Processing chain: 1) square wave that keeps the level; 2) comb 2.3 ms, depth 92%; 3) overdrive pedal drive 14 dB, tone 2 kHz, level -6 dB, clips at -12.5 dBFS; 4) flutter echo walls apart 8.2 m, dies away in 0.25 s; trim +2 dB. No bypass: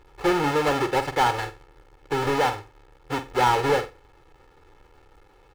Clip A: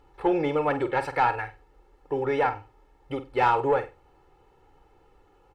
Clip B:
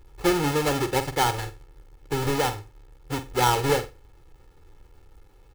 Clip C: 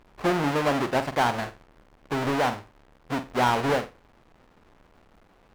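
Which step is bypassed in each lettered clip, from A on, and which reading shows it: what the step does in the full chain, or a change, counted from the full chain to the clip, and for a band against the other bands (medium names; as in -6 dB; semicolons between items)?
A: 1, distortion -5 dB; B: 3, 8 kHz band +7.0 dB; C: 2, 250 Hz band +3.5 dB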